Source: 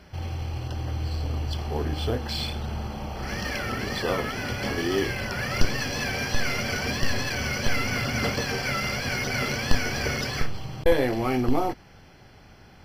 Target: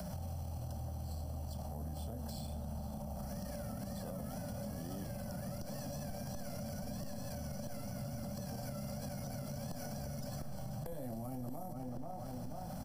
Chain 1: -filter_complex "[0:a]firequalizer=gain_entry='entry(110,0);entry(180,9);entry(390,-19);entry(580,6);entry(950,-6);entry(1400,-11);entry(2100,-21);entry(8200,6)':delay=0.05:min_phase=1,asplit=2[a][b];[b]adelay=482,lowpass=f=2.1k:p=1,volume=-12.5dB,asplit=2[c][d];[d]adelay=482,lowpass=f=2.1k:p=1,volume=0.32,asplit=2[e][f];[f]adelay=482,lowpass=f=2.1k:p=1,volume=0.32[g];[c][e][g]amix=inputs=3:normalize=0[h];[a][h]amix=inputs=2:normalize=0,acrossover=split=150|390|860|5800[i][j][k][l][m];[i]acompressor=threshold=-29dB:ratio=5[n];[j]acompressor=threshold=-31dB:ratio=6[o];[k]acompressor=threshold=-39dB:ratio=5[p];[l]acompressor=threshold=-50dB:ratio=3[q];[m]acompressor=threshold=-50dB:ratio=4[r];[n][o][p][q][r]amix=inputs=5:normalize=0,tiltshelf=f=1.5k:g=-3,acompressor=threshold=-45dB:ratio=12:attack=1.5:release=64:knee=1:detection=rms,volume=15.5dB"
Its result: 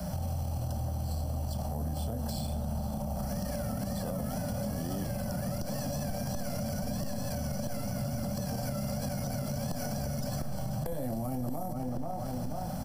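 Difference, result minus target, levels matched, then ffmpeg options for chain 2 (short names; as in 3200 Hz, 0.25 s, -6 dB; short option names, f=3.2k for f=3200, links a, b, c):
compressor: peak gain reduction -8.5 dB
-filter_complex "[0:a]firequalizer=gain_entry='entry(110,0);entry(180,9);entry(390,-19);entry(580,6);entry(950,-6);entry(1400,-11);entry(2100,-21);entry(8200,6)':delay=0.05:min_phase=1,asplit=2[a][b];[b]adelay=482,lowpass=f=2.1k:p=1,volume=-12.5dB,asplit=2[c][d];[d]adelay=482,lowpass=f=2.1k:p=1,volume=0.32,asplit=2[e][f];[f]adelay=482,lowpass=f=2.1k:p=1,volume=0.32[g];[c][e][g]amix=inputs=3:normalize=0[h];[a][h]amix=inputs=2:normalize=0,acrossover=split=150|390|860|5800[i][j][k][l][m];[i]acompressor=threshold=-29dB:ratio=5[n];[j]acompressor=threshold=-31dB:ratio=6[o];[k]acompressor=threshold=-39dB:ratio=5[p];[l]acompressor=threshold=-50dB:ratio=3[q];[m]acompressor=threshold=-50dB:ratio=4[r];[n][o][p][q][r]amix=inputs=5:normalize=0,tiltshelf=f=1.5k:g=-3,acompressor=threshold=-54.5dB:ratio=12:attack=1.5:release=64:knee=1:detection=rms,volume=15.5dB"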